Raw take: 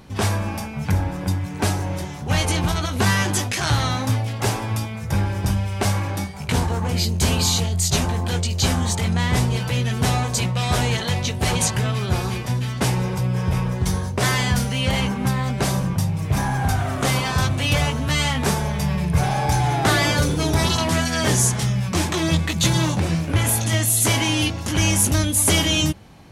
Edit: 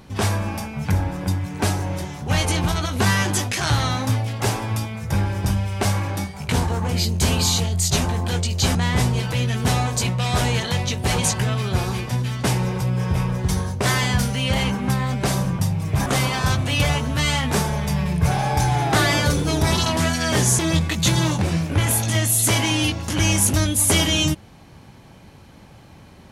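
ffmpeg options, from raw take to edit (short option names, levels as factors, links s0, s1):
-filter_complex "[0:a]asplit=4[s0][s1][s2][s3];[s0]atrim=end=8.752[s4];[s1]atrim=start=9.118:end=16.432[s5];[s2]atrim=start=16.978:end=21.512[s6];[s3]atrim=start=22.168[s7];[s4][s5]acrossfade=d=0.004:c1=hsin:c2=hsin[s8];[s8][s6]acrossfade=d=0.004:c1=hsin:c2=hsin[s9];[s9][s7]acrossfade=d=0.004:c1=hsin:c2=hsin"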